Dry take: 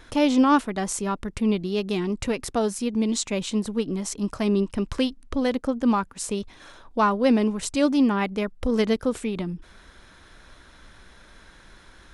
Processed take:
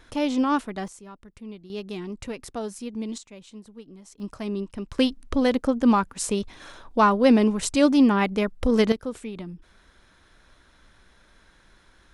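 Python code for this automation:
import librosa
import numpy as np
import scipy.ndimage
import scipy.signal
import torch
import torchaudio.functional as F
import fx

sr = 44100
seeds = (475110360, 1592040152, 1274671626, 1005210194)

y = fx.gain(x, sr, db=fx.steps((0.0, -4.5), (0.88, -17.0), (1.7, -8.0), (3.18, -18.0), (4.2, -7.5), (4.99, 2.5), (8.92, -7.0)))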